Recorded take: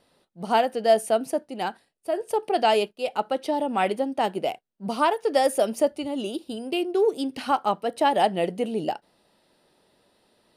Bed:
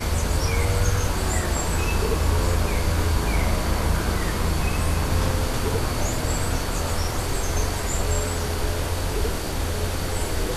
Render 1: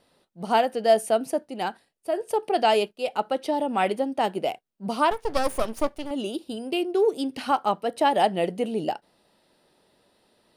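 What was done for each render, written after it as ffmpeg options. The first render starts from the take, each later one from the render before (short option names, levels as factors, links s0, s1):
-filter_complex "[0:a]asettb=1/sr,asplit=3[s0][s1][s2];[s0]atrim=end=5.114[s3];[s1]atrim=start=5.11:end=6.11,asetpts=PTS-STARTPTS,afade=t=in:d=0.004:c=qsin,afade=t=out:st=0.996:d=0.004:c=qsin,aeval=exprs='max(val(0),0)':c=same[s4];[s2]atrim=start=6.106[s5];[s3][s4]acrossfade=d=0.004:c1=hsin:c2=qsin[s6];[s6][s5]acrossfade=d=0.004:c1=qsin:c2=hsin"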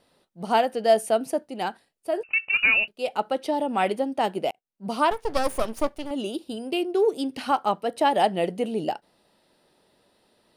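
-filter_complex "[0:a]asettb=1/sr,asplit=3[s0][s1][s2];[s0]atrim=end=2.234[s3];[s1]atrim=start=2.23:end=2.88,asetpts=PTS-STARTPTS,afade=t=in:d=0.004:c=qsin,afade=t=out:st=0.646:d=0.004:c=qsin,lowpass=f=2600:t=q:w=0.5098,lowpass=f=2600:t=q:w=0.6013,lowpass=f=2600:t=q:w=0.9,lowpass=f=2600:t=q:w=2.563,afreqshift=-3100[s4];[s2]atrim=start=2.876[s5];[s3][s4]acrossfade=d=0.004:c1=hsin:c2=qsin[s6];[s6][s5]acrossfade=d=0.004:c1=qsin:c2=hsin,asplit=2[s7][s8];[s7]atrim=end=4.51,asetpts=PTS-STARTPTS,afade=t=out:st=4.506:d=0.004:c=hsin[s9];[s8]atrim=start=4.51,asetpts=PTS-STARTPTS,afade=t=in:d=0.44[s10];[s9][s10]concat=n=2:v=0:a=1"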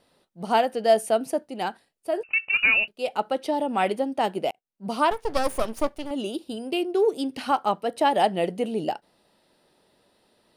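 -af anull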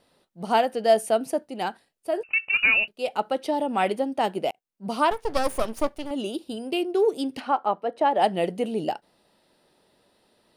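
-filter_complex "[0:a]asplit=3[s0][s1][s2];[s0]afade=t=out:st=7.39:d=0.02[s3];[s1]bandpass=f=680:t=q:w=0.52,afade=t=in:st=7.39:d=0.02,afade=t=out:st=8.21:d=0.02[s4];[s2]afade=t=in:st=8.21:d=0.02[s5];[s3][s4][s5]amix=inputs=3:normalize=0"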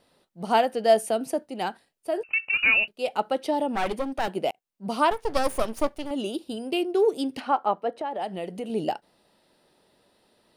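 -filter_complex "[0:a]asettb=1/sr,asplit=3[s0][s1][s2];[s0]atrim=end=1.094[s3];[s1]atrim=start=1.09:end=2.66,asetpts=PTS-STARTPTS,afade=t=in:d=0.004:c=qsin,afade=t=out:st=1.566:d=0.004:c=qsin,acrossover=split=450|3000[s4][s5][s6];[s5]acompressor=threshold=0.0708:ratio=6:attack=3.2:release=140:knee=2.83:detection=peak[s7];[s4][s7][s6]amix=inputs=3:normalize=0[s8];[s2]atrim=start=2.656[s9];[s3][s8]acrossfade=d=0.004:c1=hsin:c2=qsin[s10];[s10][s9]acrossfade=d=0.004:c1=qsin:c2=hsin,asettb=1/sr,asplit=3[s11][s12][s13];[s11]atrim=end=3.754[s14];[s12]atrim=start=3.75:end=4.28,asetpts=PTS-STARTPTS,afade=t=in:d=0.004:c=qsin,afade=t=out:st=0.526:d=0.004:c=qsin,aeval=exprs='clip(val(0),-1,0.0266)':c=same[s15];[s13]atrim=start=4.276[s16];[s14][s15]acrossfade=d=0.004:c1=hsin:c2=qsin[s17];[s17][s16]acrossfade=d=0.004:c1=qsin:c2=hsin,asettb=1/sr,asplit=3[s18][s19][s20];[s18]atrim=end=7.934[s21];[s19]atrim=start=7.93:end=8.7,asetpts=PTS-STARTPTS,afade=t=in:d=0.004:c=qsin,afade=t=out:st=0.766:d=0.004:c=qsin,acompressor=threshold=0.0251:ratio=2.5:attack=3.2:release=140:knee=1:detection=peak[s22];[s20]atrim=start=8.696[s23];[s21][s22]acrossfade=d=0.004:c1=hsin:c2=qsin[s24];[s24][s23]acrossfade=d=0.004:c1=qsin:c2=hsin"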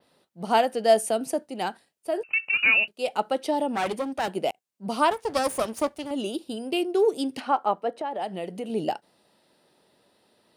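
-af "highpass=84,adynamicequalizer=threshold=0.00501:dfrequency=7900:dqfactor=0.96:tfrequency=7900:tqfactor=0.96:attack=5:release=100:ratio=0.375:range=2.5:mode=boostabove:tftype=bell"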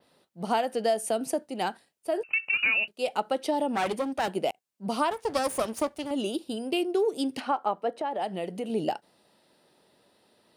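-af "acompressor=threshold=0.0794:ratio=6"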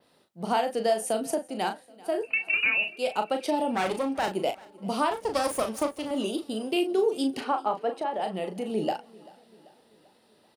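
-filter_complex "[0:a]asplit=2[s0][s1];[s1]adelay=37,volume=0.447[s2];[s0][s2]amix=inputs=2:normalize=0,aecho=1:1:389|778|1167|1556:0.075|0.0397|0.0211|0.0112"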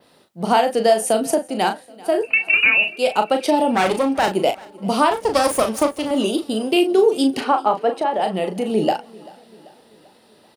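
-af "volume=2.99"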